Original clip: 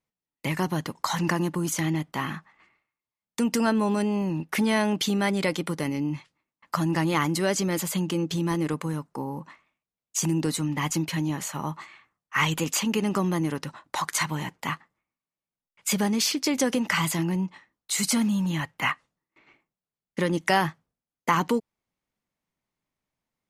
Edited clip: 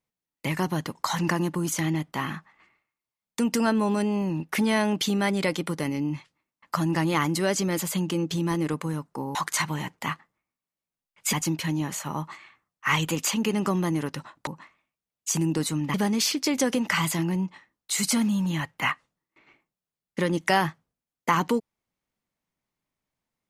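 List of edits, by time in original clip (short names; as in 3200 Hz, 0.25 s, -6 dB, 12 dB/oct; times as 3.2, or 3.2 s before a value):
9.35–10.82 swap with 13.96–15.94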